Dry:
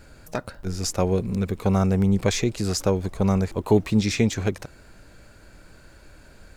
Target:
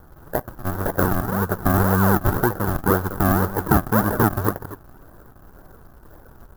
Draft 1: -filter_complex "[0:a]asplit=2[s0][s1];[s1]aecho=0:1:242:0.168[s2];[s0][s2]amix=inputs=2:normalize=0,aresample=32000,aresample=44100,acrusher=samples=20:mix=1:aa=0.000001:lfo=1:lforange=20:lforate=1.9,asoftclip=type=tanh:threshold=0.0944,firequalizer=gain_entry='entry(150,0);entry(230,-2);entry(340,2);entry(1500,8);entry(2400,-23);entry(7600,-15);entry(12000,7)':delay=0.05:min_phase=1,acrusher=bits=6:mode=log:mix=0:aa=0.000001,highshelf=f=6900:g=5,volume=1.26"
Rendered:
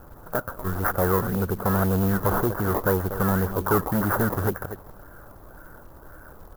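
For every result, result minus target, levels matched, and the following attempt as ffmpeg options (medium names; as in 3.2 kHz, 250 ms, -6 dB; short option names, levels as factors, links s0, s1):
saturation: distortion +14 dB; decimation with a swept rate: distortion -10 dB
-filter_complex "[0:a]asplit=2[s0][s1];[s1]aecho=0:1:242:0.168[s2];[s0][s2]amix=inputs=2:normalize=0,aresample=32000,aresample=44100,acrusher=samples=20:mix=1:aa=0.000001:lfo=1:lforange=20:lforate=1.9,asoftclip=type=tanh:threshold=0.355,firequalizer=gain_entry='entry(150,0);entry(230,-2);entry(340,2);entry(1500,8);entry(2400,-23);entry(7600,-15);entry(12000,7)':delay=0.05:min_phase=1,acrusher=bits=6:mode=log:mix=0:aa=0.000001,highshelf=f=6900:g=5,volume=1.26"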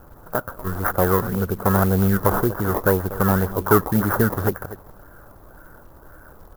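decimation with a swept rate: distortion -10 dB
-filter_complex "[0:a]asplit=2[s0][s1];[s1]aecho=0:1:242:0.168[s2];[s0][s2]amix=inputs=2:normalize=0,aresample=32000,aresample=44100,acrusher=samples=64:mix=1:aa=0.000001:lfo=1:lforange=64:lforate=1.9,asoftclip=type=tanh:threshold=0.355,firequalizer=gain_entry='entry(150,0);entry(230,-2);entry(340,2);entry(1500,8);entry(2400,-23);entry(7600,-15);entry(12000,7)':delay=0.05:min_phase=1,acrusher=bits=6:mode=log:mix=0:aa=0.000001,highshelf=f=6900:g=5,volume=1.26"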